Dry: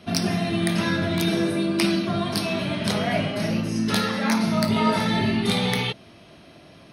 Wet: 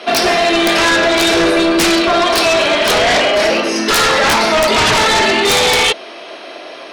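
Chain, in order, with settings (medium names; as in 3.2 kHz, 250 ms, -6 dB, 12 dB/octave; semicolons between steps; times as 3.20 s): high-pass 390 Hz 24 dB/octave; distance through air 68 m; sine folder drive 17 dB, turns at -8.5 dBFS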